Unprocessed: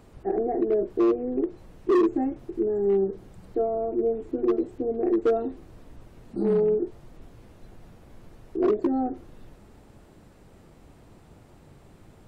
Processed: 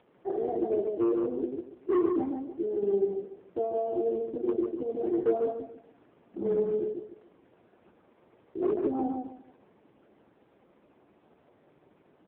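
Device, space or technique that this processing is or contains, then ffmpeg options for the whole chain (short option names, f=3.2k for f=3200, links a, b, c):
telephone: -filter_complex "[0:a]asettb=1/sr,asplit=3[a][b][c];[a]atrim=end=6.874[d];[b]atrim=start=6.87:end=8.6,asetpts=PTS-STARTPTS,afade=t=in:d=0.004:c=qsin,afade=t=out:st=1.726:d=0.004:c=qsin,bandreject=f=50:t=h:w=6,bandreject=f=100:t=h:w=6,bandreject=f=150:t=h:w=6,bandreject=f=200:t=h:w=6,bandreject=f=250:t=h:w=6,bandreject=f=300:t=h:w=6[e];[c]atrim=start=8.596[f];[d][e]acrossfade=d=0.004:c1=hsin:c2=qsin[g];[g][f]acrossfade=d=0.004:c1=qsin:c2=hsin,highpass=260,lowpass=3.1k,asplit=2[h][i];[i]adelay=145,lowpass=f=2.4k:p=1,volume=-3.5dB,asplit=2[j][k];[k]adelay=145,lowpass=f=2.4k:p=1,volume=0.27,asplit=2[l][m];[m]adelay=145,lowpass=f=2.4k:p=1,volume=0.27,asplit=2[n][o];[o]adelay=145,lowpass=f=2.4k:p=1,volume=0.27[p];[h][j][l][n][p]amix=inputs=5:normalize=0,volume=-4dB" -ar 8000 -c:a libopencore_amrnb -b:a 4750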